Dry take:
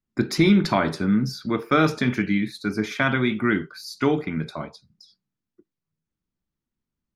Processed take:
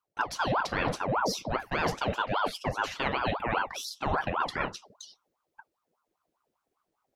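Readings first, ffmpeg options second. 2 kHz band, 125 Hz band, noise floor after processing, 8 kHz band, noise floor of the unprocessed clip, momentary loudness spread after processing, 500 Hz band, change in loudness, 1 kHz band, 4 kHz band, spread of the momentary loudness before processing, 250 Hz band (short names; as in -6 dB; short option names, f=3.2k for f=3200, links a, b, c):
-5.0 dB, -11.0 dB, -83 dBFS, -1.0 dB, under -85 dBFS, 6 LU, -6.5 dB, -7.5 dB, 0.0 dB, -4.0 dB, 11 LU, -16.5 dB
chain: -af "areverse,acompressor=threshold=-30dB:ratio=10,areverse,aeval=exprs='val(0)*sin(2*PI*780*n/s+780*0.6/5*sin(2*PI*5*n/s))':c=same,volume=7dB"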